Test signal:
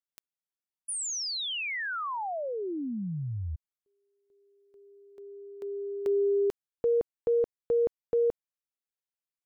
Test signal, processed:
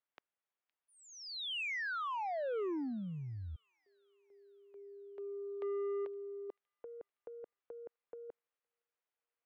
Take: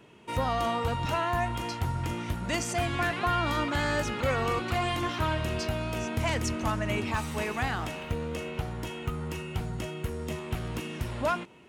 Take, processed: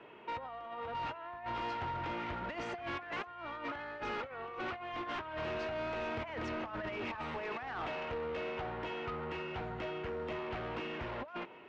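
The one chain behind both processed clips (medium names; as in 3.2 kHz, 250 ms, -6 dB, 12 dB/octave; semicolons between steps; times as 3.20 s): three-band isolator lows -16 dB, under 360 Hz, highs -18 dB, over 3.3 kHz; compressor with a negative ratio -36 dBFS, ratio -0.5; saturation -36 dBFS; distance through air 180 m; on a send: feedback echo behind a high-pass 515 ms, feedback 53%, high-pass 2.7 kHz, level -21.5 dB; on the sum: trim +2 dB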